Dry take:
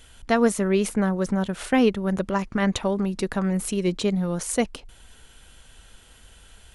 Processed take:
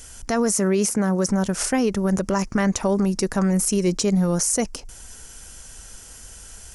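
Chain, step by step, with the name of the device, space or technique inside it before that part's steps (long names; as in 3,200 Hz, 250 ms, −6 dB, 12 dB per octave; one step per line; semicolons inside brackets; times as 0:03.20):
over-bright horn tweeter (high shelf with overshoot 4,500 Hz +7 dB, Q 3; brickwall limiter −17.5 dBFS, peak gain reduction 10 dB)
0:00.54–0:01.29: high-pass filter 93 Hz
level +5.5 dB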